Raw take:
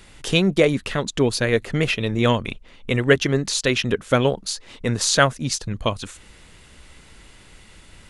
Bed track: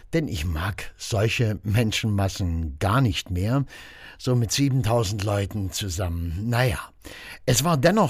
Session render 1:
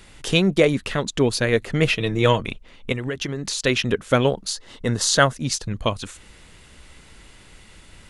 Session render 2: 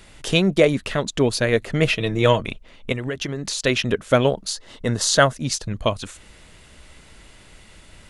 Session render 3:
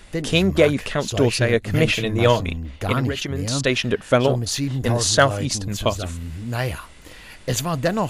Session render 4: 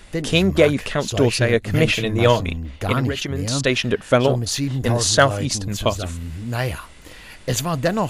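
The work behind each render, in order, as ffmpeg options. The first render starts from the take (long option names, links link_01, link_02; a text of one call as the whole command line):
ffmpeg -i in.wav -filter_complex "[0:a]asettb=1/sr,asplit=3[link_01][link_02][link_03];[link_01]atrim=end=1.814[link_04];[link_02]atrim=start=1.81:end=2.42,asetpts=PTS-STARTPTS,afade=type=in:duration=0.004:curve=qsin,afade=type=out:start_time=0.606:duration=0.004:curve=qsin,aecho=1:1:6.3:0.5,atrim=end_sample=26901[link_05];[link_03]atrim=start=2.416[link_06];[link_04][link_05]acrossfade=duration=0.004:curve1=hsin:curve2=qsin[link_07];[link_07][link_06]acrossfade=duration=0.004:curve1=qsin:curve2=hsin,asettb=1/sr,asplit=3[link_08][link_09][link_10];[link_08]atrim=end=2.924[link_11];[link_09]atrim=start=2.92:end=3.6,asetpts=PTS-STARTPTS,afade=type=in:duration=0.004:curve=qsin,afade=type=out:start_time=0.676:duration=0.004:curve=qsin,acompressor=threshold=-22dB:ratio=16:attack=3.2:release=140:knee=1:detection=peak[link_12];[link_10]atrim=start=3.596[link_13];[link_11][link_12]acrossfade=duration=0.004:curve1=hsin:curve2=qsin[link_14];[link_14][link_13]acrossfade=duration=0.004:curve1=qsin:curve2=hsin,asettb=1/sr,asplit=3[link_15][link_16][link_17];[link_15]atrim=end=4.504[link_18];[link_16]atrim=start=4.5:end=5.33,asetpts=PTS-STARTPTS,afade=type=in:duration=0.004:curve=qsin,afade=type=out:start_time=0.826:duration=0.004:curve=qsin,bandreject=frequency=2400:width=5.5[link_19];[link_17]atrim=start=5.326[link_20];[link_18][link_19]acrossfade=duration=0.004:curve1=hsin:curve2=qsin[link_21];[link_21][link_20]acrossfade=duration=0.004:curve1=qsin:curve2=hsin" out.wav
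ffmpeg -i in.wav -af "equalizer=frequency=630:width=6.3:gain=5.5" out.wav
ffmpeg -i in.wav -i bed.wav -filter_complex "[1:a]volume=-3dB[link_01];[0:a][link_01]amix=inputs=2:normalize=0" out.wav
ffmpeg -i in.wav -af "volume=1dB" out.wav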